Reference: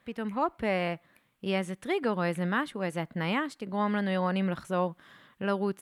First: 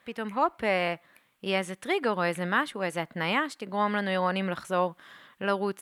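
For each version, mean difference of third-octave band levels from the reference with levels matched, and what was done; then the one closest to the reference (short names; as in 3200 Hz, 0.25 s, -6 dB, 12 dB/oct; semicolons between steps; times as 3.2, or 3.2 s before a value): 2.5 dB: low shelf 300 Hz -11 dB; gain +5 dB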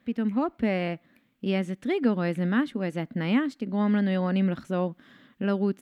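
4.0 dB: fifteen-band EQ 250 Hz +12 dB, 1000 Hz -6 dB, 10000 Hz -9 dB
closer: first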